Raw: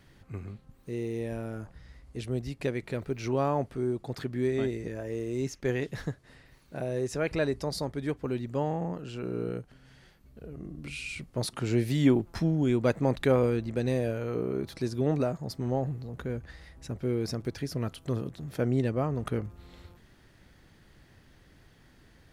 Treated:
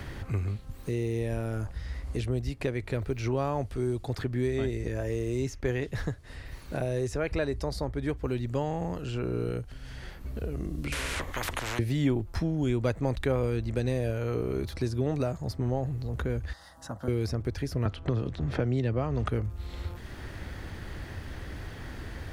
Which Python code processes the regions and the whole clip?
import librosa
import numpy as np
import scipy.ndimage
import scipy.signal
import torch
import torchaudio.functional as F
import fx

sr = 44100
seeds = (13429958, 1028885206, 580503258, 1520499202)

y = fx.chain(x, sr, fx.ripple_eq(per_octave=1.1, db=7),
    fx.spectral_comp(ratio=10.0), at=(10.92, 11.79))
y = fx.chain(y, sr, fx.highpass(hz=300.0, slope=12),
    fx.fixed_phaser(hz=970.0, stages=4), at=(16.53, 17.08))
y = fx.chain(y, sr, fx.lowpass(hz=4600.0, slope=12),
    fx.band_squash(depth_pct=70), at=(17.85, 19.29))
y = fx.low_shelf_res(y, sr, hz=110.0, db=11.0, q=1.5)
y = fx.band_squash(y, sr, depth_pct=70)